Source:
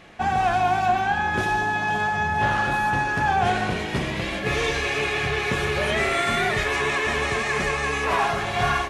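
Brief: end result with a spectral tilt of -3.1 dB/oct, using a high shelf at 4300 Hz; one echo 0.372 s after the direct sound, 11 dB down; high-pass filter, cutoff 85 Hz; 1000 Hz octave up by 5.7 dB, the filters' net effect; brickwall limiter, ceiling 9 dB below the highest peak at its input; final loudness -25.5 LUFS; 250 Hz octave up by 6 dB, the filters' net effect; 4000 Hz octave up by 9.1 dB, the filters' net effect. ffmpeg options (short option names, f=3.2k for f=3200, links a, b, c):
-af "highpass=85,equalizer=f=250:t=o:g=8,equalizer=f=1k:t=o:g=6.5,equalizer=f=4k:t=o:g=7,highshelf=f=4.3k:g=8.5,alimiter=limit=-13dB:level=0:latency=1,aecho=1:1:372:0.282,volume=-5dB"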